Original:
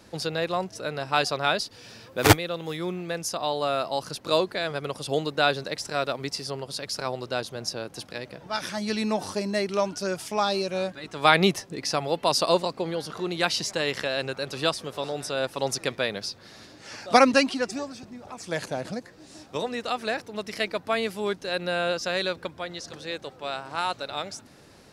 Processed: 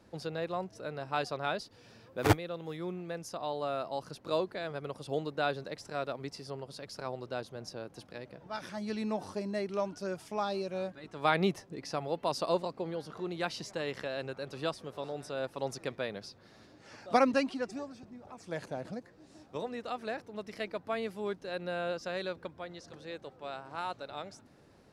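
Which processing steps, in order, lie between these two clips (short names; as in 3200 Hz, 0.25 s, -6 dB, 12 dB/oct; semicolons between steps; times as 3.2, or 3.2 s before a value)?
high shelf 2000 Hz -9.5 dB; gain -7 dB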